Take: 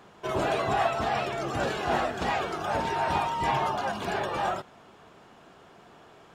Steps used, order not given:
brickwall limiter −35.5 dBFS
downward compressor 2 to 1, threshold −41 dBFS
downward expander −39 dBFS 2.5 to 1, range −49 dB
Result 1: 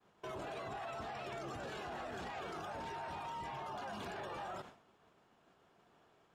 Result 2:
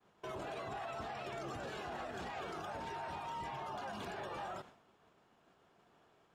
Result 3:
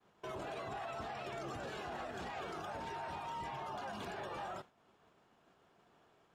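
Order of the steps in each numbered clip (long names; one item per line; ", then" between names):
downward expander, then brickwall limiter, then downward compressor
downward expander, then downward compressor, then brickwall limiter
downward compressor, then downward expander, then brickwall limiter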